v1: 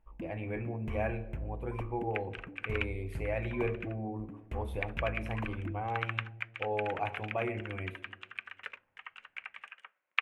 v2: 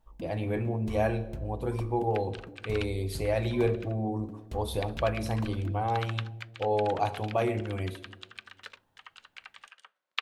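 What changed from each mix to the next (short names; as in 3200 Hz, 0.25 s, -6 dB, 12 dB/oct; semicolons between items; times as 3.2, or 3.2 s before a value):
speech +7.0 dB; master: add resonant high shelf 3200 Hz +10 dB, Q 3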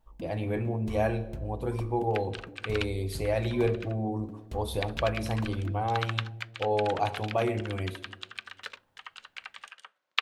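second sound +5.0 dB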